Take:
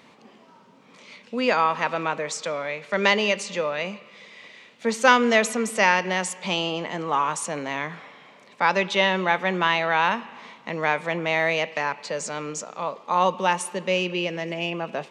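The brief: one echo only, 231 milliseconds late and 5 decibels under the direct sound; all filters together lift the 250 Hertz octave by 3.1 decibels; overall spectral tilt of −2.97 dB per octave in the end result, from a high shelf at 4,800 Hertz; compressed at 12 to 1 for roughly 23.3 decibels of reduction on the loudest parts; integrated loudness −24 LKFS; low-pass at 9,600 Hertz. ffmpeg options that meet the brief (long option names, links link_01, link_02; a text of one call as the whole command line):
ffmpeg -i in.wav -af "lowpass=9600,equalizer=frequency=250:width_type=o:gain=4,highshelf=frequency=4800:gain=8.5,acompressor=threshold=-33dB:ratio=12,aecho=1:1:231:0.562,volume=12dB" out.wav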